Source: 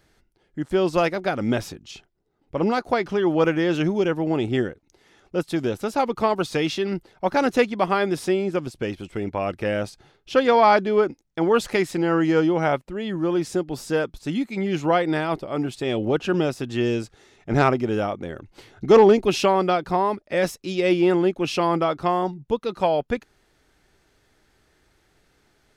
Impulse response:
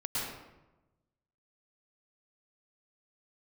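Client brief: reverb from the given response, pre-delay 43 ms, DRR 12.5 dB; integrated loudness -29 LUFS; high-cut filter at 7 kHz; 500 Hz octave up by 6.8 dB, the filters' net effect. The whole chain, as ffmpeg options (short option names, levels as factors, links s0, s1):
-filter_complex "[0:a]lowpass=7000,equalizer=f=500:t=o:g=8.5,asplit=2[s0][s1];[1:a]atrim=start_sample=2205,adelay=43[s2];[s1][s2]afir=irnorm=-1:irlink=0,volume=0.126[s3];[s0][s3]amix=inputs=2:normalize=0,volume=0.251"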